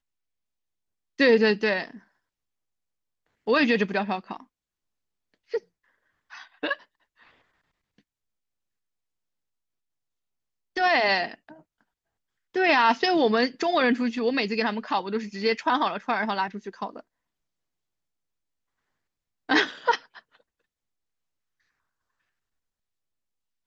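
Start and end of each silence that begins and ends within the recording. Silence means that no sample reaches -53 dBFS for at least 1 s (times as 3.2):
2.04–3.47
7.99–10.76
17.01–19.49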